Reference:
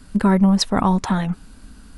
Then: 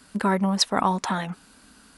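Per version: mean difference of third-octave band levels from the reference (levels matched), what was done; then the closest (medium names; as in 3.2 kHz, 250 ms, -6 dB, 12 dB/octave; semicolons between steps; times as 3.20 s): 4.0 dB: high-pass 530 Hz 6 dB/octave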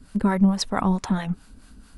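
2.0 dB: harmonic tremolo 4.5 Hz, depth 70%, crossover 520 Hz; trim -1.5 dB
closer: second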